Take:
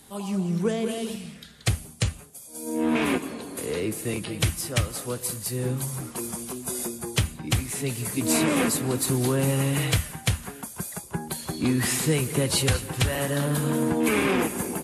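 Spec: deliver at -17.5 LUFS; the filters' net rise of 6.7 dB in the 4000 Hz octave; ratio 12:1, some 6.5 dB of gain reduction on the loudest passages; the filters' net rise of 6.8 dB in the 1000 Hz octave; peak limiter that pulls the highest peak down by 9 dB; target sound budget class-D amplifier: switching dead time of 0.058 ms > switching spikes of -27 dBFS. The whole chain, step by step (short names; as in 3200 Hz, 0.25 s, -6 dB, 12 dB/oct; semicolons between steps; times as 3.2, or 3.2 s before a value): bell 1000 Hz +8 dB; bell 4000 Hz +8 dB; compressor 12:1, threshold -22 dBFS; limiter -18 dBFS; switching dead time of 0.058 ms; switching spikes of -27 dBFS; gain +12 dB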